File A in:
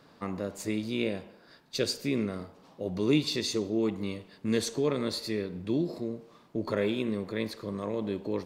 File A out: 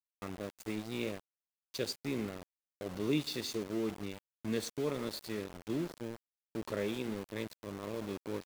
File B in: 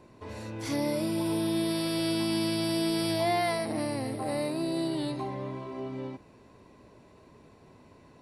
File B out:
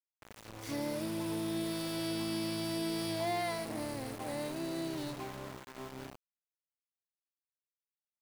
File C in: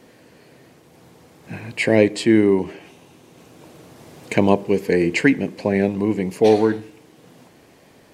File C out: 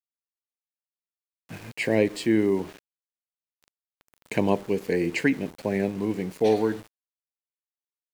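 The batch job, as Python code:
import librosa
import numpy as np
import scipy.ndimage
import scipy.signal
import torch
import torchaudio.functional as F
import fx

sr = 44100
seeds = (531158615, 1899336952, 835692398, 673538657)

y = np.where(np.abs(x) >= 10.0 ** (-34.0 / 20.0), x, 0.0)
y = F.gain(torch.from_numpy(y), -7.0).numpy()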